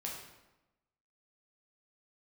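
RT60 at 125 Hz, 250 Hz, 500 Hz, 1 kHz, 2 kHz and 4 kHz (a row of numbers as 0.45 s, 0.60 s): 1.1 s, 1.1 s, 1.0 s, 1.0 s, 0.85 s, 0.75 s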